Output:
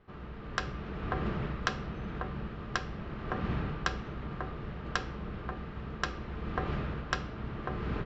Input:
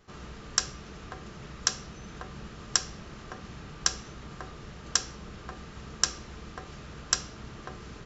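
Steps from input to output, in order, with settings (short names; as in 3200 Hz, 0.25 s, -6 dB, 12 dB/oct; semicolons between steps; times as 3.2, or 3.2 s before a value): AGC gain up to 14 dB; air absorption 430 m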